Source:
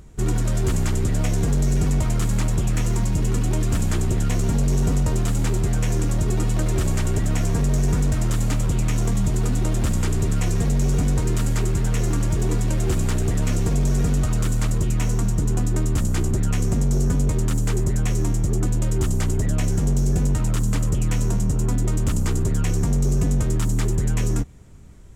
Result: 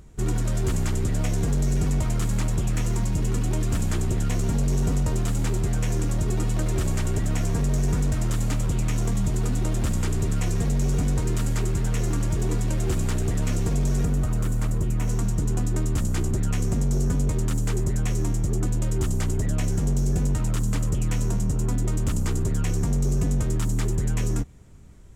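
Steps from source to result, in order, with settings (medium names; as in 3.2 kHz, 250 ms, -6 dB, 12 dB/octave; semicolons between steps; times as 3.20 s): 14.05–15.08 s: peaking EQ 4.4 kHz -7 dB 2.2 oct; trim -3 dB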